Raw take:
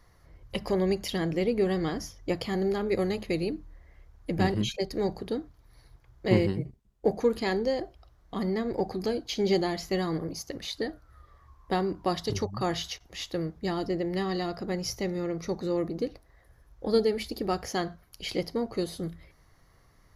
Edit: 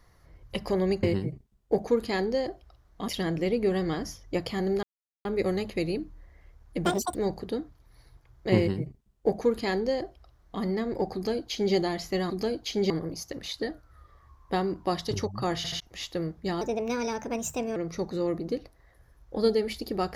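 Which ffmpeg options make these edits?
-filter_complex "[0:a]asplit=13[s0][s1][s2][s3][s4][s5][s6][s7][s8][s9][s10][s11][s12];[s0]atrim=end=1.032[s13];[s1]atrim=start=6.358:end=8.412[s14];[s2]atrim=start=1.028:end=2.78,asetpts=PTS-STARTPTS,afade=t=out:st=1.748:d=0.004:c=hsin,apad=pad_dur=0.42[s15];[s3]atrim=start=2.78:end=4.384,asetpts=PTS-STARTPTS,afade=t=in:d=0.004:c=hsin[s16];[s4]atrim=start=4.38:end=4.94,asetpts=PTS-STARTPTS,asetrate=82026,aresample=44100,atrim=end_sample=13277,asetpts=PTS-STARTPTS[s17];[s5]atrim=start=4.936:end=10.092[s18];[s6]atrim=start=8.928:end=9.532[s19];[s7]atrim=start=10.088:end=12.832[s20];[s8]atrim=start=12.748:end=12.832[s21];[s9]atrim=start=12.748:end=12.832[s22];[s10]atrim=start=12.988:end=13.804[s23];[s11]atrim=start=13.8:end=15.26,asetpts=PTS-STARTPTS,asetrate=56007,aresample=44100[s24];[s12]atrim=start=15.256[s25];[s13][s14]acrossfade=d=0.004:c1=hsin:c2=hsin[s26];[s15][s16]concat=n=2:v=0:a=1[s27];[s26][s27]acrossfade=d=0.004:c1=hsin:c2=hsin[s28];[s28][s17]acrossfade=d=0.004:c1=hsin:c2=hsin[s29];[s29][s18]acrossfade=d=0.004:c1=hsin:c2=hsin[s30];[s30][s19]acrossfade=d=0.004:c1=hsin:c2=hsin[s31];[s31][s20]acrossfade=d=0.004:c1=hsin:c2=hsin[s32];[s32][s21]acrossfade=d=0.004:c1=hsin:c2=hsin[s33];[s33][s22]acrossfade=d=0.004:c1=hsin:c2=hsin[s34];[s34][s23]acrossfade=d=0.004:c1=hsin:c2=hsin[s35];[s35][s24]acrossfade=d=0.004:c1=hsin:c2=hsin[s36];[s36][s25]acrossfade=d=0.004:c1=hsin:c2=hsin"

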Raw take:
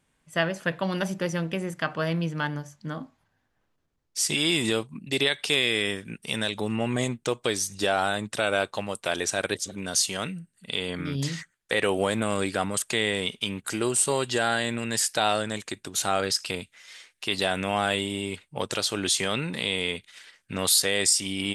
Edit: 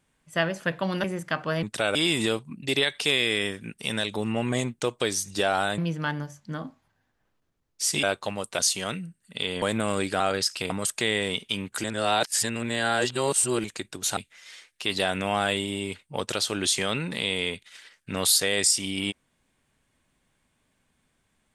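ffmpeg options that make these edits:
-filter_complex "[0:a]asplit=13[s0][s1][s2][s3][s4][s5][s6][s7][s8][s9][s10][s11][s12];[s0]atrim=end=1.042[s13];[s1]atrim=start=1.548:end=2.142[s14];[s2]atrim=start=8.218:end=8.542[s15];[s3]atrim=start=4.388:end=8.222[s16];[s4]atrim=start=2.138:end=4.392[s17];[s5]atrim=start=8.538:end=9.102[s18];[s6]atrim=start=9.918:end=10.952[s19];[s7]atrim=start=12.038:end=12.622[s20];[s8]atrim=start=16.088:end=16.592[s21];[s9]atrim=start=12.618:end=13.762[s22];[s10]atrim=start=13.758:end=15.562,asetpts=PTS-STARTPTS,areverse[s23];[s11]atrim=start=15.558:end=16.092[s24];[s12]atrim=start=16.588[s25];[s13][s14]acrossfade=d=0.004:c1=hsin:c2=hsin[s26];[s26][s15]acrossfade=d=0.004:c1=hsin:c2=hsin[s27];[s27][s16]acrossfade=d=0.004:c1=hsin:c2=hsin[s28];[s28][s17]acrossfade=d=0.004:c1=hsin:c2=hsin[s29];[s29][s18]acrossfade=d=0.004:c1=hsin:c2=hsin[s30];[s30][s19]acrossfade=d=0.004:c1=hsin:c2=hsin[s31];[s31][s20]acrossfade=d=0.004:c1=hsin:c2=hsin[s32];[s32][s21]acrossfade=d=0.004:c1=hsin:c2=hsin[s33];[s33][s22]acrossfade=d=0.004:c1=hsin:c2=hsin[s34];[s34][s23]acrossfade=d=0.004:c1=hsin:c2=hsin[s35];[s35][s24]acrossfade=d=0.004:c1=hsin:c2=hsin[s36];[s36][s25]acrossfade=d=0.004:c1=hsin:c2=hsin"

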